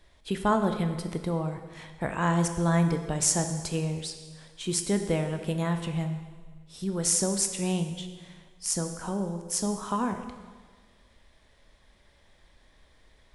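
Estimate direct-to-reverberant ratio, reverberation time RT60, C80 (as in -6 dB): 6.5 dB, 1.5 s, 9.5 dB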